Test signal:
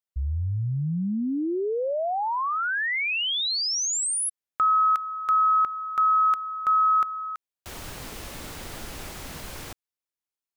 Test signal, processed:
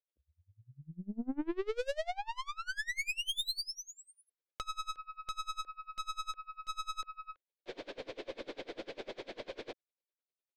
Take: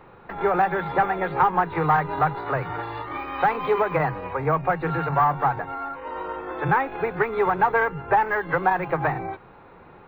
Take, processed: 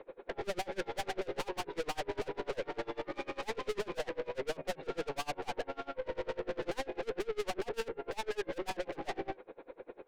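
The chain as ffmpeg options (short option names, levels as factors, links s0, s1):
-af "highpass=f=310:w=0.5412,highpass=f=310:w=1.3066,equalizer=f=530:t=q:w=4:g=6,equalizer=f=840:t=q:w=4:g=-7,equalizer=f=1300:t=q:w=4:g=-9,equalizer=f=1900:t=q:w=4:g=-6,equalizer=f=2800:t=q:w=4:g=-8,lowpass=f=3400:w=0.5412,lowpass=f=3400:w=1.3066,aeval=exprs='(tanh(70.8*val(0)+0.4)-tanh(0.4))/70.8':c=same,equalizer=f=1100:t=o:w=1:g=-7,aeval=exprs='val(0)*pow(10,-27*(0.5-0.5*cos(2*PI*10*n/s))/20)':c=same,volume=2.66"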